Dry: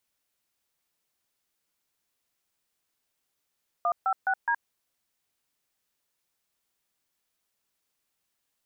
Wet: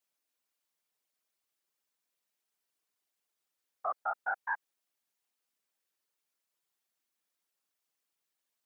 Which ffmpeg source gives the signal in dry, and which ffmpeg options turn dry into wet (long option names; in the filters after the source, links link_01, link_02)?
-f lavfi -i "aevalsrc='0.0562*clip(min(mod(t,0.209),0.07-mod(t,0.209))/0.002,0,1)*(eq(floor(t/0.209),0)*(sin(2*PI*697*mod(t,0.209))+sin(2*PI*1209*mod(t,0.209)))+eq(floor(t/0.209),1)*(sin(2*PI*770*mod(t,0.209))+sin(2*PI*1336*mod(t,0.209)))+eq(floor(t/0.209),2)*(sin(2*PI*770*mod(t,0.209))+sin(2*PI*1477*mod(t,0.209)))+eq(floor(t/0.209),3)*(sin(2*PI*941*mod(t,0.209))+sin(2*PI*1633*mod(t,0.209))))':duration=0.836:sample_rate=44100"
-af "highpass=220,afftfilt=real='hypot(re,im)*cos(2*PI*random(0))':imag='hypot(re,im)*sin(2*PI*random(1))':win_size=512:overlap=0.75"